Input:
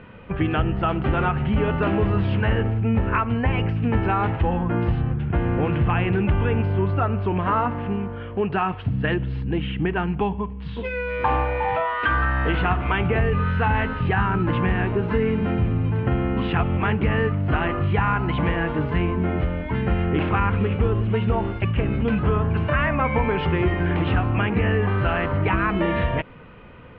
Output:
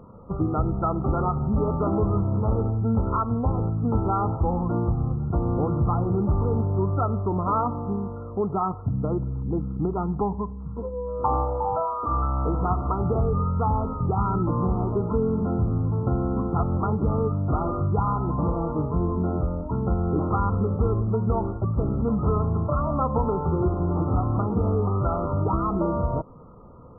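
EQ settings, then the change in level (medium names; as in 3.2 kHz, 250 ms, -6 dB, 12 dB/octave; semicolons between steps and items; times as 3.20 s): brick-wall FIR low-pass 1.4 kHz; -2.0 dB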